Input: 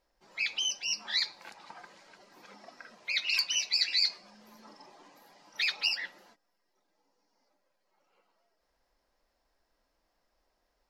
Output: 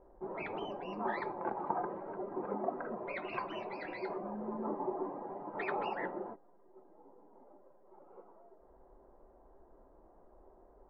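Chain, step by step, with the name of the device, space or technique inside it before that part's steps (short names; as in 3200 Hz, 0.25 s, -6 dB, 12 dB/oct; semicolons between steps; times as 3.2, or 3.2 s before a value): under water (LPF 1000 Hz 24 dB/oct; bell 380 Hz +11 dB 0.29 oct); gain +16.5 dB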